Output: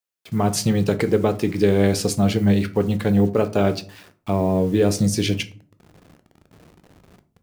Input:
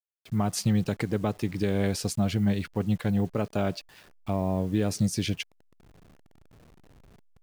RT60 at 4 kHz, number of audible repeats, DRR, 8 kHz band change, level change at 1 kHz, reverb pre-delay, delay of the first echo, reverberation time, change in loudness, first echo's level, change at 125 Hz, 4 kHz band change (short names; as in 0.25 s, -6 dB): 0.25 s, none, 9.5 dB, +7.5 dB, +8.0 dB, 6 ms, none, 0.45 s, +8.0 dB, none, +6.0 dB, +7.5 dB